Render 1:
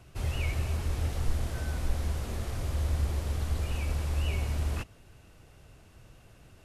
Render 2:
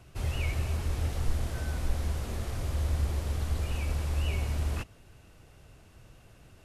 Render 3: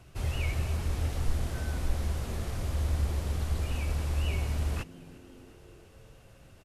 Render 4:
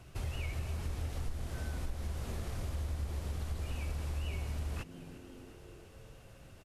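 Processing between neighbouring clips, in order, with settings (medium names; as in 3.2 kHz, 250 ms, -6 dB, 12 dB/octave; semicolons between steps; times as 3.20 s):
no audible change
frequency-shifting echo 352 ms, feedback 62%, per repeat +93 Hz, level -22.5 dB
compression 3:1, threshold -36 dBFS, peak gain reduction 12 dB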